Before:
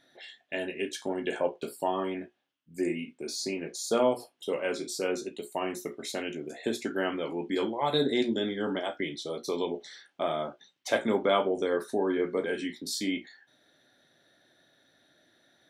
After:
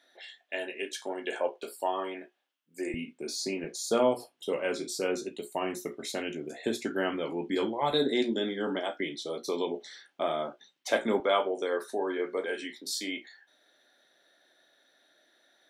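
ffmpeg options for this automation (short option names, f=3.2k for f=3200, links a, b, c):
-af "asetnsamples=n=441:p=0,asendcmd='2.94 highpass f 120;3.64 highpass f 59;7.92 highpass f 190;11.2 highpass f 410',highpass=430"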